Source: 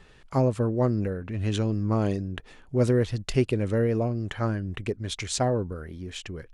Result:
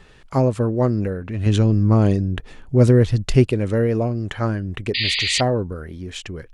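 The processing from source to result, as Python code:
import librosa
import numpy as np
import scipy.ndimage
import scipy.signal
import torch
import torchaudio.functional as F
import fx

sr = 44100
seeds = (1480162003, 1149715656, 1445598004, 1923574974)

y = fx.low_shelf(x, sr, hz=230.0, db=7.5, at=(1.46, 3.47))
y = fx.spec_paint(y, sr, seeds[0], shape='noise', start_s=4.94, length_s=0.47, low_hz=1800.0, high_hz=4900.0, level_db=-27.0)
y = y * librosa.db_to_amplitude(5.0)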